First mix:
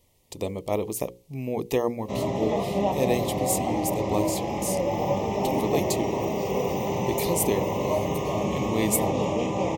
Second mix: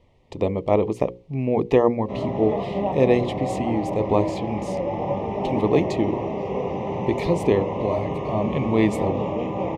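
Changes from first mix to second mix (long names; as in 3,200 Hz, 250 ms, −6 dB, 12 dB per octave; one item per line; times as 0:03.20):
speech +7.5 dB
master: add low-pass filter 2,200 Hz 12 dB per octave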